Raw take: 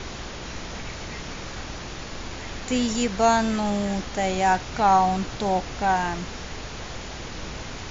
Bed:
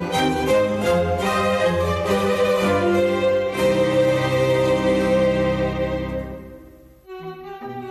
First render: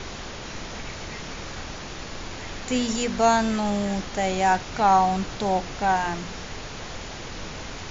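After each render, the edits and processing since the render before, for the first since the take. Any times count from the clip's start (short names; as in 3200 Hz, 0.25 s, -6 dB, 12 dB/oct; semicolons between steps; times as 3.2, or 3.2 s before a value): de-hum 60 Hz, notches 6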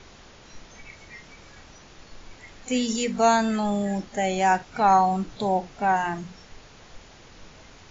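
noise print and reduce 13 dB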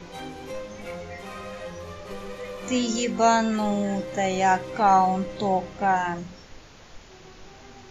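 add bed -18 dB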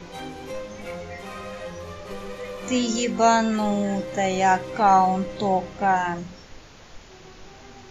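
gain +1.5 dB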